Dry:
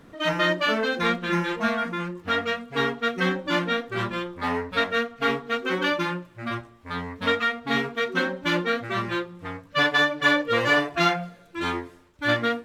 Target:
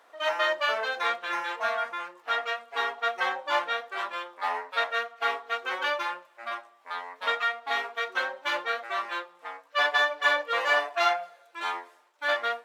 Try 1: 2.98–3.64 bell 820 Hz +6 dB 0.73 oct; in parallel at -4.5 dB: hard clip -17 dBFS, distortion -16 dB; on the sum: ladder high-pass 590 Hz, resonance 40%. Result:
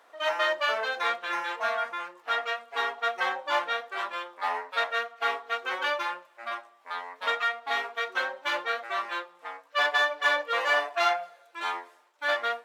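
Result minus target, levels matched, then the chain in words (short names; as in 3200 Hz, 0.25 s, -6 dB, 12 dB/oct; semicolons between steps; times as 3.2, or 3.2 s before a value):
hard clip: distortion +24 dB
2.98–3.64 bell 820 Hz +6 dB 0.73 oct; in parallel at -4.5 dB: hard clip -9.5 dBFS, distortion -40 dB; on the sum: ladder high-pass 590 Hz, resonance 40%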